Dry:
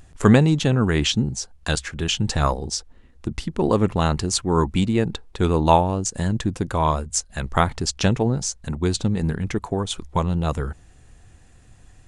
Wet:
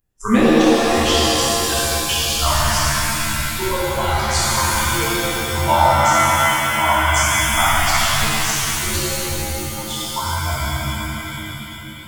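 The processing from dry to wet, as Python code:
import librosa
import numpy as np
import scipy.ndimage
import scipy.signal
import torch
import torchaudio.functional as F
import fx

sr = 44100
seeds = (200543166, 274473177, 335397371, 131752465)

y = fx.noise_reduce_blind(x, sr, reduce_db=27)
y = fx.rev_shimmer(y, sr, seeds[0], rt60_s=3.3, semitones=7, shimmer_db=-2, drr_db=-10.0)
y = y * 10.0 ** (-4.0 / 20.0)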